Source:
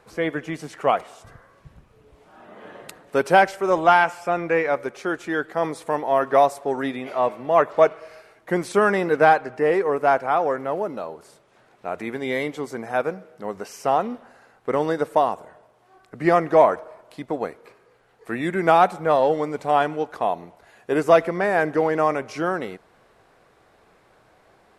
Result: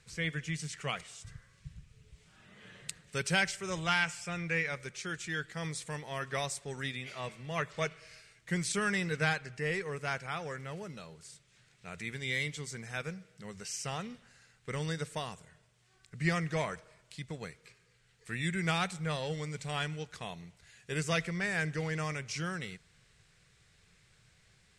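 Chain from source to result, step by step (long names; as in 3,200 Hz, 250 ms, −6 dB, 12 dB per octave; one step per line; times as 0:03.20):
drawn EQ curve 160 Hz 0 dB, 280 Hz −20 dB, 450 Hz −17 dB, 700 Hz −24 dB, 1,000 Hz −20 dB, 2,000 Hz −4 dB, 8,200 Hz +5 dB, 12,000 Hz −11 dB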